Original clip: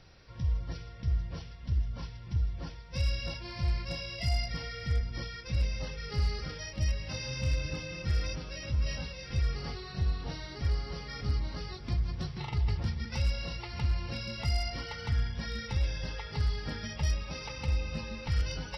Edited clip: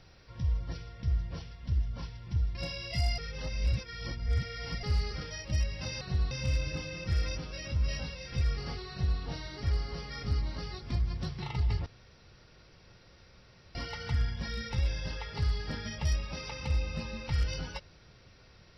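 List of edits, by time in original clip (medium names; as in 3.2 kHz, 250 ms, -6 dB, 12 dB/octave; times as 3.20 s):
2.55–3.83 s: delete
4.46–6.11 s: reverse
9.88–10.18 s: copy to 7.29 s
12.84–14.73 s: room tone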